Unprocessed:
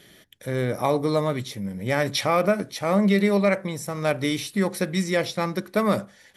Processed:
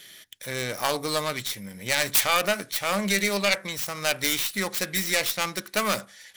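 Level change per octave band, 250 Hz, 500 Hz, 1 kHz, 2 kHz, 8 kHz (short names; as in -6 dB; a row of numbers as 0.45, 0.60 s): -9.5, -6.5, -1.5, +3.5, +9.5 dB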